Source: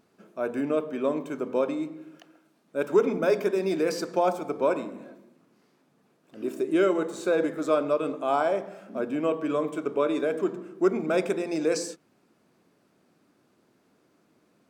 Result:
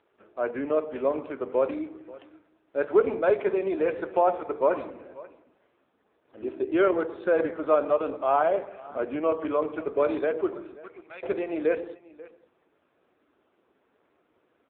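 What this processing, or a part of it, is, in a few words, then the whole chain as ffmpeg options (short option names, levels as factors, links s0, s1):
satellite phone: -filter_complex "[0:a]asettb=1/sr,asplit=3[s0][s1][s2];[s0]atrim=end=10.764[s3];[s1]atrim=start=10.76:end=11.23,asetpts=PTS-STARTPTS,afade=t=in:d=0.004:c=qsin,afade=t=out:st=0.466:d=0.004:c=qsin,aderivative[s4];[s2]atrim=start=11.226[s5];[s3][s4]acrossfade=d=0.004:c1=hsin:c2=qsin[s6];[s6][s5]acrossfade=d=0.004:c1=qsin:c2=hsin,highpass=390,lowpass=3100,aecho=1:1:533:0.0944,volume=1.5" -ar 8000 -c:a libopencore_amrnb -b:a 5900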